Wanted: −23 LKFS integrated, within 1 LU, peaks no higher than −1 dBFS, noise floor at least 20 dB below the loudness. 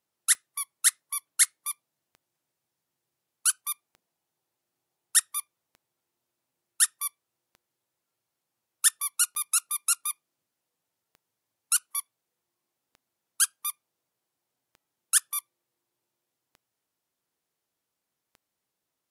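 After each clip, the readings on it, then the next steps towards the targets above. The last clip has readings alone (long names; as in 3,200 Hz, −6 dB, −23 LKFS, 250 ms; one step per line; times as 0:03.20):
number of clicks 11; integrated loudness −26.0 LKFS; sample peak −6.5 dBFS; target loudness −23.0 LKFS
→ click removal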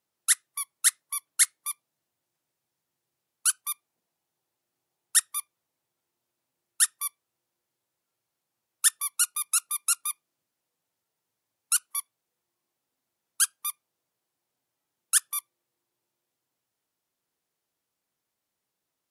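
number of clicks 0; integrated loudness −26.0 LKFS; sample peak −6.5 dBFS; target loudness −23.0 LKFS
→ level +3 dB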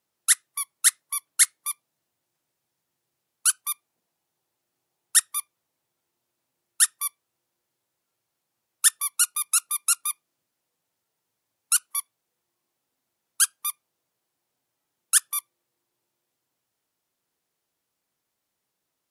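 integrated loudness −23.0 LKFS; sample peak −3.5 dBFS; background noise floor −81 dBFS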